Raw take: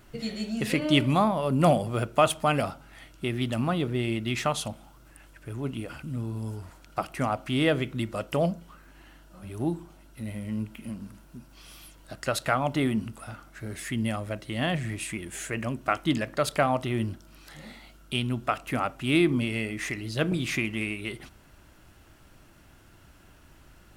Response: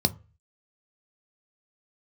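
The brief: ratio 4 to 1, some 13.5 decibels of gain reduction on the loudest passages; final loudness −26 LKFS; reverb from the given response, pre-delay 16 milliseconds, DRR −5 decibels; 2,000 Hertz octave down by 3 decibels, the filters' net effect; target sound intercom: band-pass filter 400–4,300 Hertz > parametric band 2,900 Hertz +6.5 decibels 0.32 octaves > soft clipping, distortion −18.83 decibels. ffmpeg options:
-filter_complex "[0:a]equalizer=frequency=2000:width_type=o:gain=-6,acompressor=threshold=-33dB:ratio=4,asplit=2[link_01][link_02];[1:a]atrim=start_sample=2205,adelay=16[link_03];[link_02][link_03]afir=irnorm=-1:irlink=0,volume=-5dB[link_04];[link_01][link_04]amix=inputs=2:normalize=0,highpass=400,lowpass=4300,equalizer=frequency=2900:width_type=o:width=0.32:gain=6.5,asoftclip=threshold=-19.5dB,volume=7dB"

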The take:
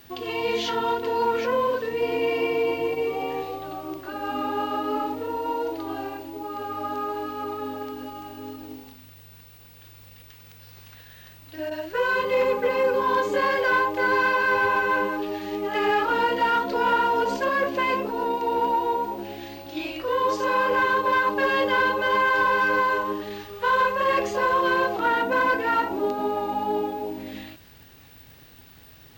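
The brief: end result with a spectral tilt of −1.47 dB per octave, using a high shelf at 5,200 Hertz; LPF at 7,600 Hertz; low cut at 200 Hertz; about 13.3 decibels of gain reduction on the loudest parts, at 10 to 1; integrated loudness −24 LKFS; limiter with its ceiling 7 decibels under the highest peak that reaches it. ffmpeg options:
ffmpeg -i in.wav -af "highpass=200,lowpass=7600,highshelf=frequency=5200:gain=-5.5,acompressor=threshold=-32dB:ratio=10,volume=13dB,alimiter=limit=-16dB:level=0:latency=1" out.wav

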